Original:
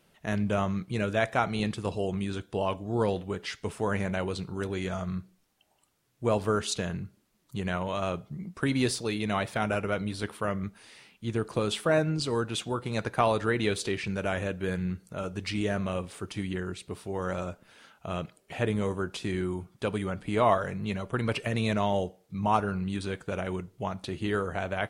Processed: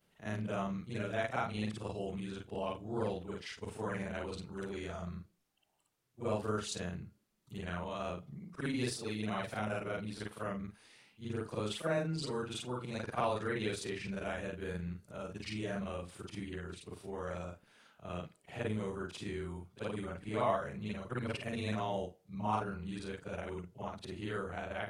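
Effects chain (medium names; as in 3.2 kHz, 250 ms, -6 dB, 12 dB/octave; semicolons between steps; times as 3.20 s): short-time spectra conjugated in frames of 113 ms; trim -5.5 dB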